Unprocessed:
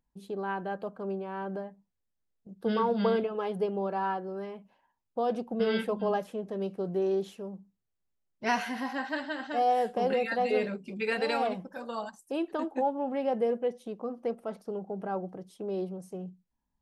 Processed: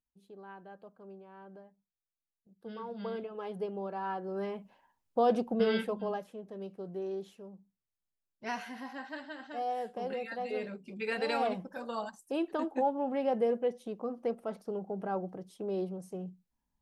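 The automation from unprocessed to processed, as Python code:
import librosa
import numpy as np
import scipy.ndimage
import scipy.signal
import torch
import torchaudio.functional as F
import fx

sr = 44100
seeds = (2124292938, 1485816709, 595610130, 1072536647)

y = fx.gain(x, sr, db=fx.line((2.77, -15.5), (3.53, -6.5), (4.03, -6.5), (4.46, 3.0), (5.42, 3.0), (6.29, -9.0), (10.48, -9.0), (11.51, -1.0)))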